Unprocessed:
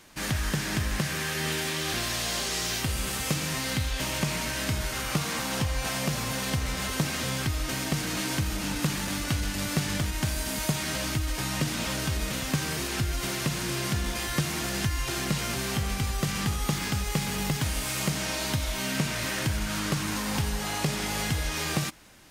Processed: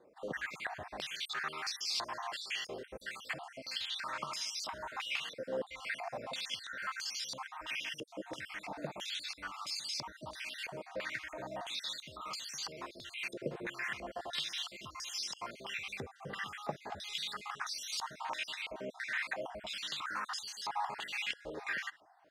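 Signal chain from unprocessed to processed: random holes in the spectrogram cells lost 52%; step-sequenced band-pass 3 Hz 490–4900 Hz; trim +5 dB

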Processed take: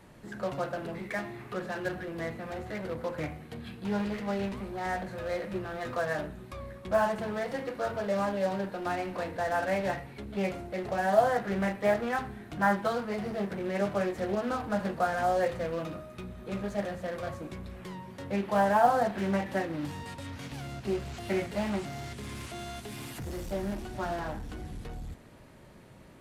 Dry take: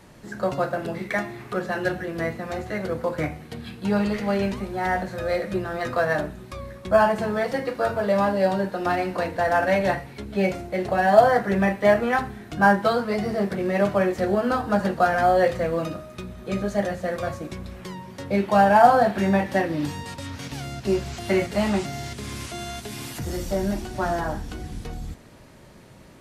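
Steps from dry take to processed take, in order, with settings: peaking EQ 5.6 kHz -5 dB 1 oct; in parallel at -5 dB: wavefolder -32 dBFS; on the sum: loudspeaker Doppler distortion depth 0.2 ms; trim -8.5 dB

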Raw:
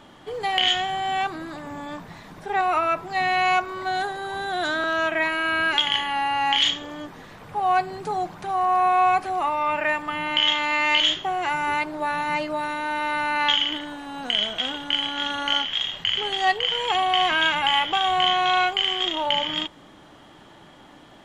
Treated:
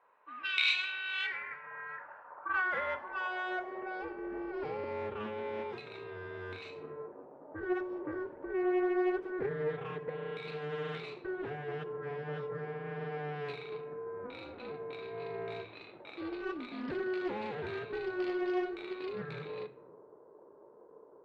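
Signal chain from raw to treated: level-controlled noise filter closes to 340 Hz, open at -18.5 dBFS; 1.27–1.54 s: time-frequency box 540–1600 Hz +9 dB; 5.63–6.78 s: peaking EQ 1.3 kHz -7 dB 1.4 oct; in parallel at -1.5 dB: compression, threshold -35 dBFS, peak gain reduction 18 dB; on the sum: ring modulator 740 Hz; saturation -13 dBFS, distortion -20 dB; band-pass sweep 2.8 kHz -> 380 Hz, 1.17–4.40 s; on a send at -11.5 dB: reverberation RT60 0.55 s, pre-delay 3 ms; on the sum: loudspeaker Doppler distortion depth 0.24 ms

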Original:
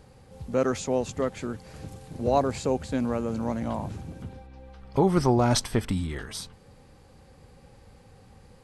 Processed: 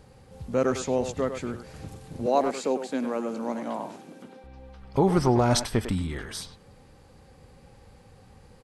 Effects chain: 2.26–4.44 s: high-pass 230 Hz 24 dB/octave; speakerphone echo 100 ms, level -8 dB

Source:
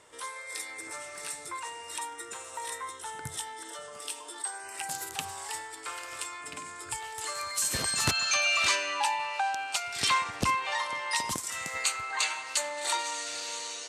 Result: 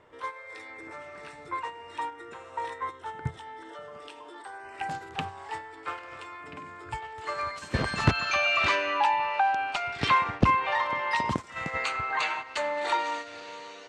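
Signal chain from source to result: low-pass 2.3 kHz 12 dB/octave; gate -39 dBFS, range -9 dB; bass shelf 410 Hz +6.5 dB; in parallel at -2 dB: compression, threshold -45 dBFS, peak gain reduction 23 dB; on the sum: trim +3.5 dB

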